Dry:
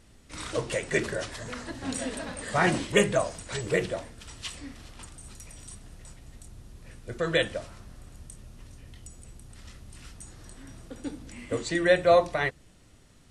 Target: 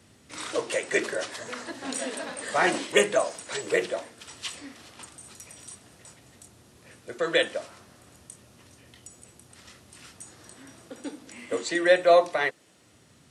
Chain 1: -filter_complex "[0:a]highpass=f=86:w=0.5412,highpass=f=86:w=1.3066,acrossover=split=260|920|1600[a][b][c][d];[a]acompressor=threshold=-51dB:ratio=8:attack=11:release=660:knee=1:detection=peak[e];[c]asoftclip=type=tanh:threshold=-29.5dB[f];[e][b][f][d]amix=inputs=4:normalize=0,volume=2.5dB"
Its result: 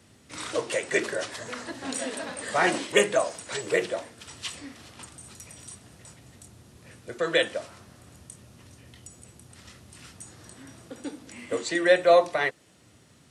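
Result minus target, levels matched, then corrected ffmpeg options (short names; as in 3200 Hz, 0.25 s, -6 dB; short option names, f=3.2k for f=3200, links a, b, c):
compressor: peak gain reduction -6.5 dB
-filter_complex "[0:a]highpass=f=86:w=0.5412,highpass=f=86:w=1.3066,acrossover=split=260|920|1600[a][b][c][d];[a]acompressor=threshold=-58.5dB:ratio=8:attack=11:release=660:knee=1:detection=peak[e];[c]asoftclip=type=tanh:threshold=-29.5dB[f];[e][b][f][d]amix=inputs=4:normalize=0,volume=2.5dB"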